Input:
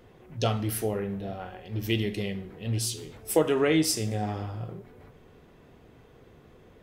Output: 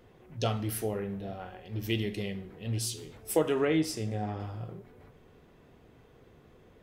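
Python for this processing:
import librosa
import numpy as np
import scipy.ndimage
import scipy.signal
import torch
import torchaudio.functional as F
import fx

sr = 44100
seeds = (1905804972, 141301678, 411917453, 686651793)

y = fx.high_shelf(x, sr, hz=4300.0, db=-10.5, at=(3.65, 4.4))
y = y * librosa.db_to_amplitude(-3.5)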